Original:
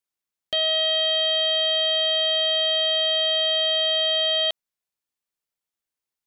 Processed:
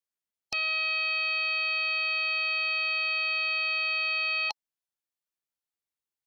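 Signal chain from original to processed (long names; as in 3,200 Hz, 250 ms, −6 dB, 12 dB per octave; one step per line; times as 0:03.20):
formants moved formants +5 semitones
level −6.5 dB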